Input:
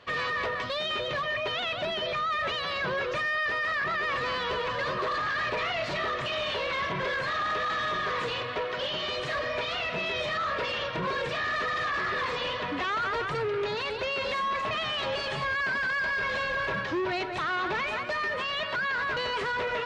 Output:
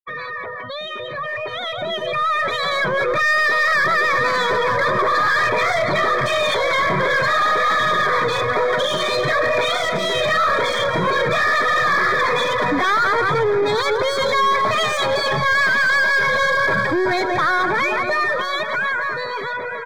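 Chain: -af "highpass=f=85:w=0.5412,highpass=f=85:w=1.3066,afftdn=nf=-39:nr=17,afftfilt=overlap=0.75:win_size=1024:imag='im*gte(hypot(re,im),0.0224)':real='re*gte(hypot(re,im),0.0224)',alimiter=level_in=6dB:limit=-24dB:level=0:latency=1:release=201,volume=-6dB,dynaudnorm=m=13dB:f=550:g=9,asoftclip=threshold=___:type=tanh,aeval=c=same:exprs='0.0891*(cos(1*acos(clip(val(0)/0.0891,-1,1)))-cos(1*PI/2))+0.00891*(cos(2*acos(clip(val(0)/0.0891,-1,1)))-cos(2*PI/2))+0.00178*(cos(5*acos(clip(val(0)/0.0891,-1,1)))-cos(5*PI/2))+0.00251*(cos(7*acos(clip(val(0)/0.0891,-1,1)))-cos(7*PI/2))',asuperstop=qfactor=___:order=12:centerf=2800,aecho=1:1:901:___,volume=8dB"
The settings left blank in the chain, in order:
-20.5dB, 4.3, 0.237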